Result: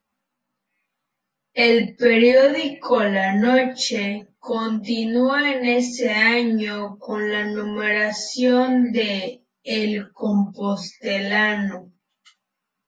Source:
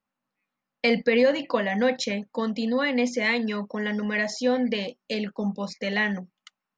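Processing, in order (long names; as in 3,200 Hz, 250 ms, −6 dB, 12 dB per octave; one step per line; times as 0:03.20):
time stretch by phase vocoder 1.9×
every ending faded ahead of time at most 280 dB per second
level +8.5 dB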